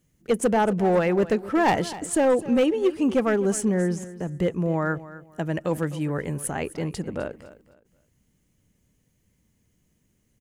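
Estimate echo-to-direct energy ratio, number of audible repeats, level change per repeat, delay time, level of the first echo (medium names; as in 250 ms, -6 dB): -16.0 dB, 2, -11.5 dB, 257 ms, -16.5 dB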